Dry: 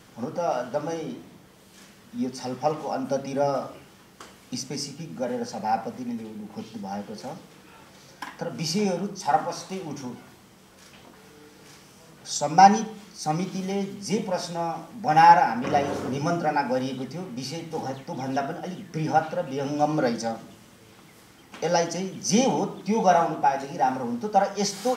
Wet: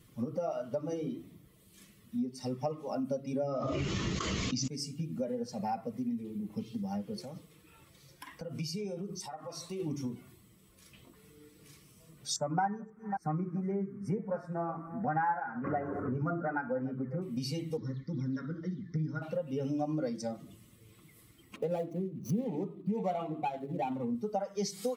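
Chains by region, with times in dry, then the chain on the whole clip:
0:03.48–0:04.68: bad sample-rate conversion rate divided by 3×, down none, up filtered + envelope flattener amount 100%
0:07.21–0:09.80: parametric band 230 Hz −4 dB 0.69 octaves + downward compressor 4 to 1, threshold −35 dBFS
0:12.36–0:17.22: delay that plays each chunk backwards 270 ms, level −14 dB + high shelf with overshoot 2,300 Hz −13.5 dB, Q 3
0:17.77–0:19.22: high-frequency loss of the air 65 metres + phaser with its sweep stopped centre 2,700 Hz, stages 6
0:21.56–0:24.15: running median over 25 samples + high-pass filter 75 Hz + high-shelf EQ 5,800 Hz −4 dB
whole clip: spectral dynamics exaggerated over time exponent 1.5; low-shelf EQ 310 Hz +8.5 dB; downward compressor 5 to 1, threshold −38 dBFS; level +5.5 dB

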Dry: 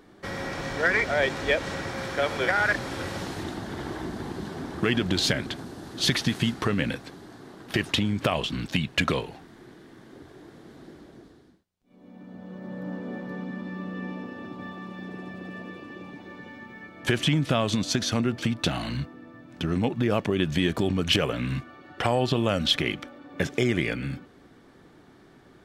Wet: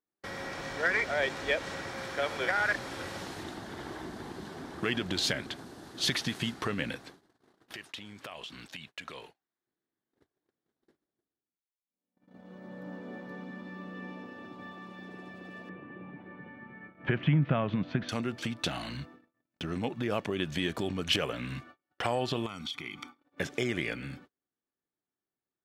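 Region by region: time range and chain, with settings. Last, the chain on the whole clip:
0:07.73–0:09.67: low-shelf EQ 410 Hz −9.5 dB + downward compressor 3 to 1, threshold −36 dBFS
0:15.69–0:18.09: low-pass filter 2,400 Hz 24 dB per octave + parametric band 150 Hz +10 dB 0.99 octaves
0:22.46–0:23.20: high-pass filter 160 Hz 6 dB per octave + comb filter 0.9 ms, depth 92% + downward compressor 10 to 1, threshold −29 dBFS
whole clip: noise gate −42 dBFS, range −35 dB; low-shelf EQ 320 Hz −6.5 dB; level −4.5 dB

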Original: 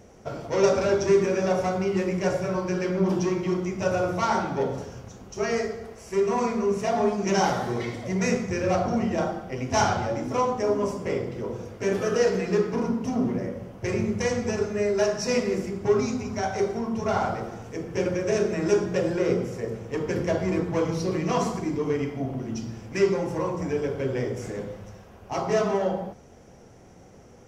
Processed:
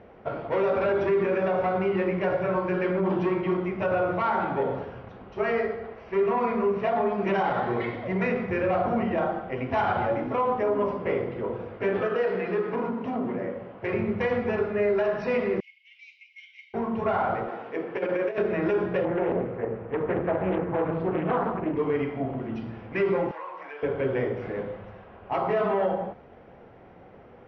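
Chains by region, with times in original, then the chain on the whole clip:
0:12.08–0:13.93: high-pass filter 180 Hz 6 dB per octave + downward compressor 2 to 1, threshold −26 dBFS
0:15.60–0:16.74: Chebyshev high-pass with heavy ripple 2,100 Hz, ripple 9 dB + highs frequency-modulated by the lows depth 0.12 ms
0:17.48–0:18.38: high-pass filter 280 Hz + compressor whose output falls as the input rises −28 dBFS, ratio −0.5
0:19.05–0:21.77: low-pass filter 1,900 Hz + highs frequency-modulated by the lows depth 0.53 ms
0:23.31–0:23.83: high-pass filter 990 Hz + downward compressor 2.5 to 1, threshold −39 dBFS
whole clip: Bessel low-pass filter 2,000 Hz, order 8; low-shelf EQ 360 Hz −10 dB; brickwall limiter −22.5 dBFS; level +6 dB

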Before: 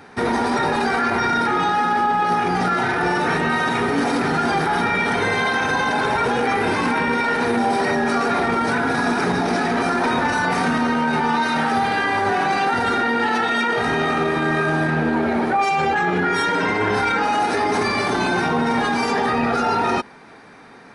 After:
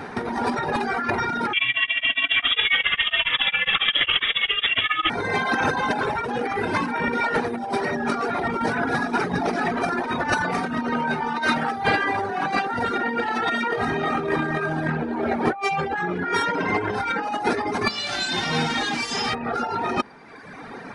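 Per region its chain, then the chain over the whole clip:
0:01.53–0:05.10: double-tracking delay 44 ms −4 dB + voice inversion scrambler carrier 3,600 Hz + tremolo along a rectified sine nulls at 7.3 Hz
0:17.87–0:19.33: spectral envelope flattened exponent 0.3 + Chebyshev low-pass filter 4,800 Hz + tuned comb filter 53 Hz, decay 1.1 s, mix 80%
whole clip: reverb reduction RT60 1.1 s; high-shelf EQ 3,300 Hz −7.5 dB; compressor whose output falls as the input rises −27 dBFS, ratio −0.5; level +5 dB

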